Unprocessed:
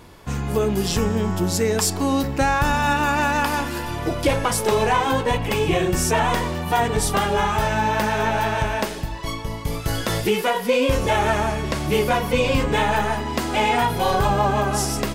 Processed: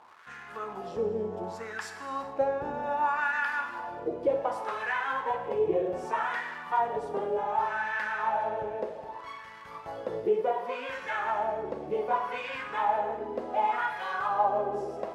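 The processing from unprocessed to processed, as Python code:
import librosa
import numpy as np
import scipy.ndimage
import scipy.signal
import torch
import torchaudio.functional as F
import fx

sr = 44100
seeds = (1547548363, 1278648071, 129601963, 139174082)

y = fx.dmg_crackle(x, sr, seeds[0], per_s=530.0, level_db=-28.0)
y = fx.wah_lfo(y, sr, hz=0.66, low_hz=440.0, high_hz=1700.0, q=3.5)
y = fx.rev_gated(y, sr, seeds[1], gate_ms=450, shape='falling', drr_db=6.5)
y = y * 10.0 ** (-2.0 / 20.0)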